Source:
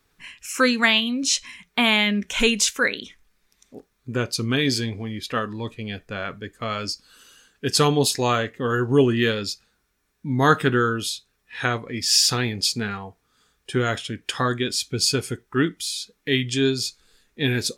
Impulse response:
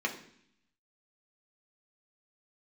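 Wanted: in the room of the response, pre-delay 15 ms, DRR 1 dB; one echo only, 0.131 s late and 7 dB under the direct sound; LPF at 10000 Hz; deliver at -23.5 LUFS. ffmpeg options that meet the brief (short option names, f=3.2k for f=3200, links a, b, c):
-filter_complex "[0:a]lowpass=10k,aecho=1:1:131:0.447,asplit=2[a][b];[1:a]atrim=start_sample=2205,adelay=15[c];[b][c]afir=irnorm=-1:irlink=0,volume=-8dB[d];[a][d]amix=inputs=2:normalize=0,volume=-3.5dB"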